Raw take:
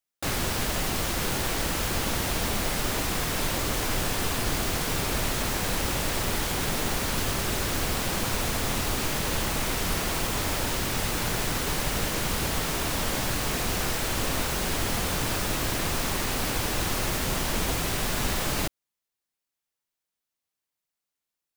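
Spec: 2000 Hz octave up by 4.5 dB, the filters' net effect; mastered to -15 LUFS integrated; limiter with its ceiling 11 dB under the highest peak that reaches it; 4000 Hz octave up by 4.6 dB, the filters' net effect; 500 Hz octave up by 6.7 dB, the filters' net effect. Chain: bell 500 Hz +8 dB; bell 2000 Hz +4 dB; bell 4000 Hz +4.5 dB; gain +15.5 dB; limiter -6.5 dBFS

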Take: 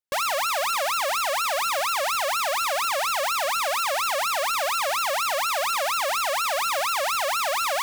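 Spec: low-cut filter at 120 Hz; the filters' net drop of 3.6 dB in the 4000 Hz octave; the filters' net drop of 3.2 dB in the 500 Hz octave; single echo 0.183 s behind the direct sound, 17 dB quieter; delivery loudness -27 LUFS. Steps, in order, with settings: HPF 120 Hz; bell 500 Hz -4 dB; bell 4000 Hz -4.5 dB; echo 0.183 s -17 dB; gain -2 dB

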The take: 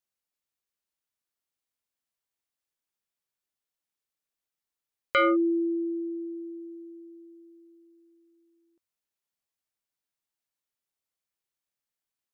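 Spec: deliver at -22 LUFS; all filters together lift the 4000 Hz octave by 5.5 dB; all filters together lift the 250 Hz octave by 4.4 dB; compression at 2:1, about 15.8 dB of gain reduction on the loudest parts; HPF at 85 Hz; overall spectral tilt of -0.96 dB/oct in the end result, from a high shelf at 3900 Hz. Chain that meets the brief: HPF 85 Hz; bell 250 Hz +7.5 dB; high shelf 3900 Hz +5 dB; bell 4000 Hz +5.5 dB; compressor 2:1, threshold -48 dBFS; gain +18.5 dB

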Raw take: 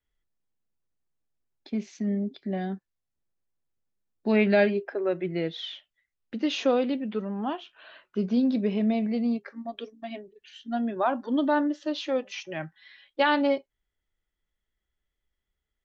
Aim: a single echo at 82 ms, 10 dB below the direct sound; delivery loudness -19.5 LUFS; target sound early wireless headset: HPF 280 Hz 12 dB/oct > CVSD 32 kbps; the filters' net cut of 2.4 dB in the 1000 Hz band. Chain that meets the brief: HPF 280 Hz 12 dB/oct; bell 1000 Hz -3 dB; echo 82 ms -10 dB; CVSD 32 kbps; gain +11 dB

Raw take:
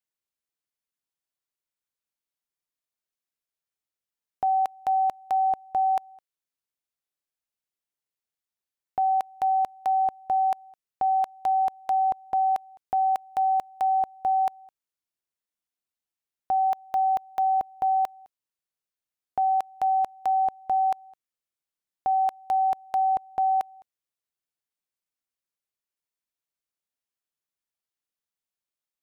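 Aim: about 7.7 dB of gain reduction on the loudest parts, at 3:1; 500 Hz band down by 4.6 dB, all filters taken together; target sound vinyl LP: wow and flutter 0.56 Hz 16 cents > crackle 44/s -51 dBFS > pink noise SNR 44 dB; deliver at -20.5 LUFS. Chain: bell 500 Hz -9 dB; compressor 3:1, threshold -35 dBFS; wow and flutter 0.56 Hz 16 cents; crackle 44/s -51 dBFS; pink noise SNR 44 dB; gain +16 dB

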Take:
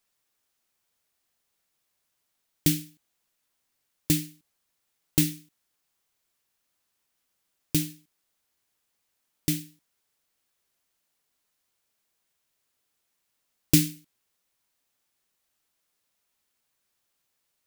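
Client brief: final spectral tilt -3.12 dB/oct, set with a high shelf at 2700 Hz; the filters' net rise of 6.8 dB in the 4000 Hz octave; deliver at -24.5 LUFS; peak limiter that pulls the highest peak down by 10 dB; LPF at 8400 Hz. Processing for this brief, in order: LPF 8400 Hz; high shelf 2700 Hz +5.5 dB; bell 4000 Hz +4 dB; gain +6 dB; limiter -7 dBFS

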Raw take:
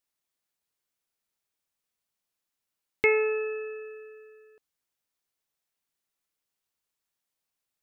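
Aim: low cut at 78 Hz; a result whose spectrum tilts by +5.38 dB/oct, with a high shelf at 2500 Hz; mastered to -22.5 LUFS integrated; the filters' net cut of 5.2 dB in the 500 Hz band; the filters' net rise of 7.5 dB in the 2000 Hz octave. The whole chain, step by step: HPF 78 Hz; bell 500 Hz -6.5 dB; bell 2000 Hz +6 dB; high shelf 2500 Hz +5.5 dB

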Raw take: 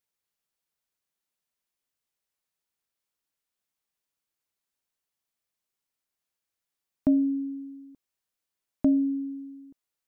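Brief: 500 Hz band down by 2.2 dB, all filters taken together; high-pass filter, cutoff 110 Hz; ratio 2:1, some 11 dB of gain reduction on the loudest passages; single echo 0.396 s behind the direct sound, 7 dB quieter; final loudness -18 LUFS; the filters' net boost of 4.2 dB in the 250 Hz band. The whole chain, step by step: HPF 110 Hz; bell 250 Hz +6 dB; bell 500 Hz -5 dB; compressor 2:1, threshold -35 dBFS; echo 0.396 s -7 dB; gain +14.5 dB

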